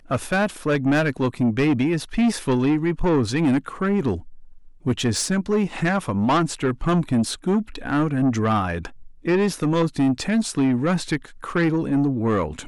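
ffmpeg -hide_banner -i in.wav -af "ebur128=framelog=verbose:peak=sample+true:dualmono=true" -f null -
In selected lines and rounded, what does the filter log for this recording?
Integrated loudness:
  I:         -19.0 LUFS
  Threshold: -29.2 LUFS
Loudness range:
  LRA:         1.8 LU
  Threshold: -39.2 LUFS
  LRA low:   -20.0 LUFS
  LRA high:  -18.2 LUFS
Sample peak:
  Peak:      -14.3 dBFS
True peak:
  Peak:      -13.6 dBFS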